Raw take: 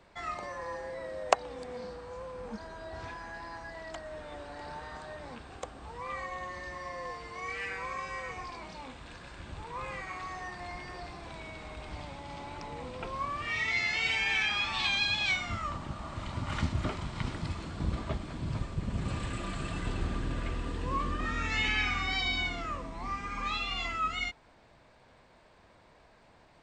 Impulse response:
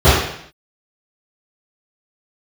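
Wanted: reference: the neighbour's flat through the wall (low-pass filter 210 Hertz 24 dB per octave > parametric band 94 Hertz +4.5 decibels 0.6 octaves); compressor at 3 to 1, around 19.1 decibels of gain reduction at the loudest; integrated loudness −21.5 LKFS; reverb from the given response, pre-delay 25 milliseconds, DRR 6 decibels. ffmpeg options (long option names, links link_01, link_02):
-filter_complex "[0:a]acompressor=threshold=-46dB:ratio=3,asplit=2[link_01][link_02];[1:a]atrim=start_sample=2205,adelay=25[link_03];[link_02][link_03]afir=irnorm=-1:irlink=0,volume=-35.5dB[link_04];[link_01][link_04]amix=inputs=2:normalize=0,lowpass=frequency=210:width=0.5412,lowpass=frequency=210:width=1.3066,equalizer=frequency=94:width_type=o:width=0.6:gain=4.5,volume=22.5dB"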